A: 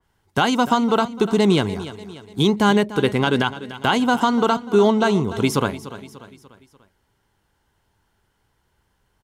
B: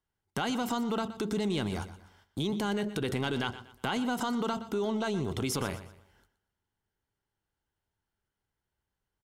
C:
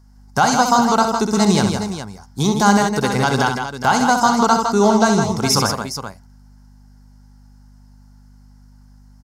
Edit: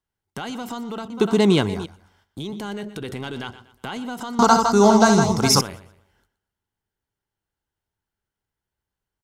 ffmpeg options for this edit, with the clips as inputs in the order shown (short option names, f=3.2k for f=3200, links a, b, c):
-filter_complex "[1:a]asplit=3[a][b][c];[a]atrim=end=1.102[d];[0:a]atrim=start=1.098:end=1.862[e];[b]atrim=start=1.858:end=4.392[f];[2:a]atrim=start=4.388:end=5.612[g];[c]atrim=start=5.608[h];[d][e]acrossfade=d=0.004:c1=hsin:c2=hsin[i];[i][f]acrossfade=d=0.004:c1=hsin:c2=hsin[j];[j][g]acrossfade=d=0.004:c1=hsin:c2=hsin[k];[k][h]acrossfade=d=0.004:c1=hsin:c2=hsin"